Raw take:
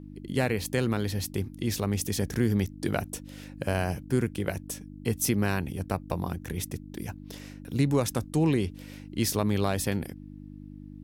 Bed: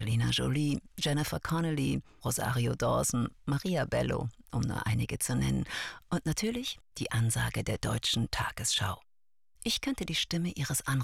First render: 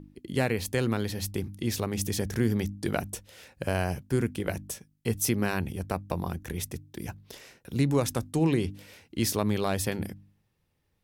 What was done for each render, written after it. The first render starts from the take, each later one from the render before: de-hum 50 Hz, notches 6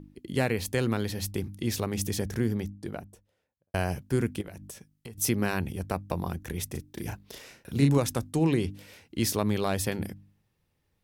1.94–3.74 s: studio fade out; 4.41–5.18 s: compression 12:1, threshold -38 dBFS; 6.70–7.98 s: doubling 36 ms -3 dB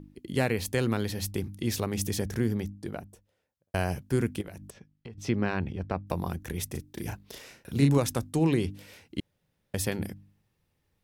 4.70–6.07 s: distance through air 190 m; 9.20–9.74 s: room tone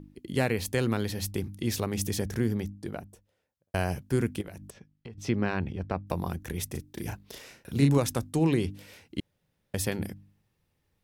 no audible change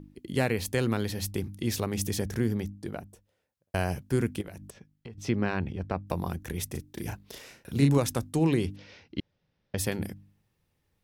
8.76–9.78 s: steep low-pass 5.9 kHz 48 dB/octave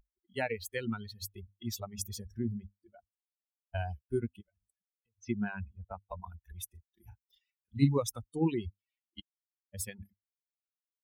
expander on every frequency bin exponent 3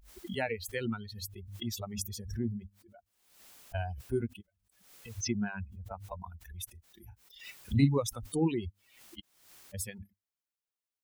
swell ahead of each attack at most 73 dB/s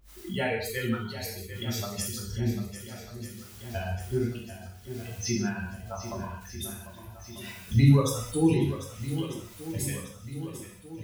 on a send: shuffle delay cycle 1243 ms, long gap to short 1.5:1, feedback 53%, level -12 dB; on the sum: gated-style reverb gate 240 ms falling, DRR -4 dB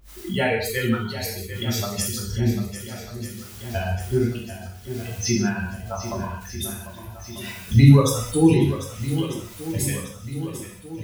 trim +7 dB

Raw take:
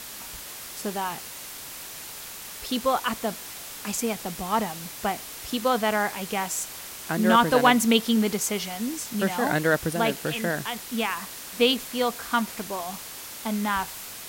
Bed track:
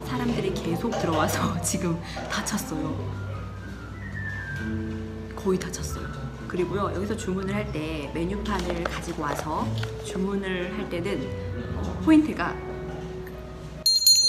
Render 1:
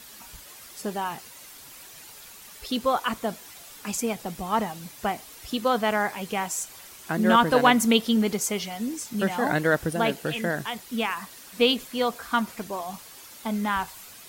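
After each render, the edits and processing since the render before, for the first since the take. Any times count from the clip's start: noise reduction 9 dB, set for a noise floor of -40 dBFS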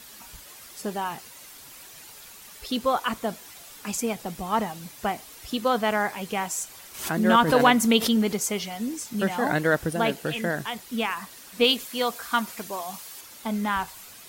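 6.94–8.34 s: swell ahead of each attack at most 95 dB/s; 11.64–13.21 s: tilt EQ +1.5 dB/octave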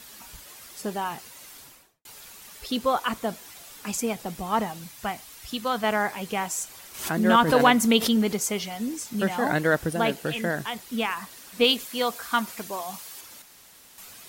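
1.58–2.05 s: studio fade out; 4.84–5.84 s: peaking EQ 410 Hz -7 dB 1.8 oct; 13.42–13.98 s: room tone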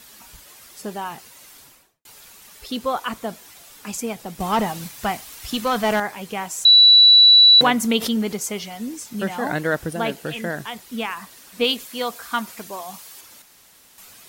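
4.40–6.00 s: waveshaping leveller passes 2; 6.65–7.61 s: bleep 3.94 kHz -7 dBFS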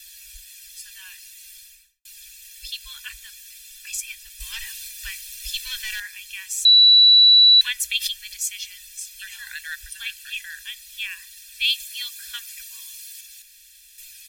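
inverse Chebyshev band-stop 140–750 Hz, stop band 60 dB; comb 1.2 ms, depth 88%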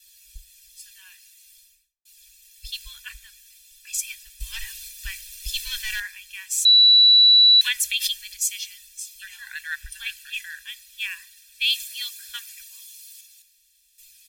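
peak limiter -15.5 dBFS, peak gain reduction 7 dB; three bands expanded up and down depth 70%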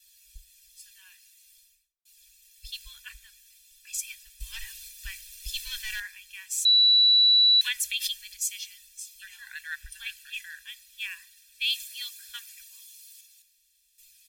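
trim -5.5 dB

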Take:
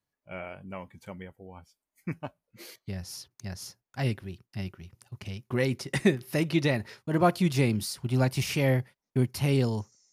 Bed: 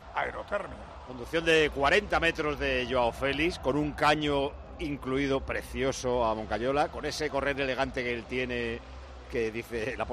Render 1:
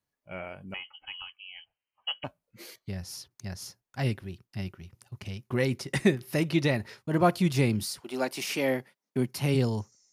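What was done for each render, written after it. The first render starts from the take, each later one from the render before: 0.74–2.24 s: frequency inversion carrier 3.1 kHz; 7.99–9.54 s: high-pass 330 Hz -> 120 Hz 24 dB/octave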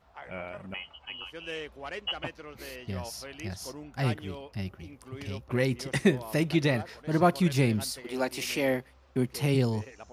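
add bed -15 dB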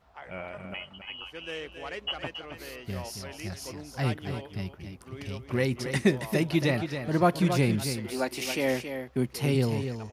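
delay 274 ms -8.5 dB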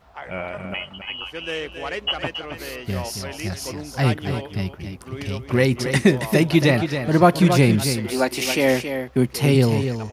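trim +9 dB; peak limiter -3 dBFS, peak gain reduction 2.5 dB

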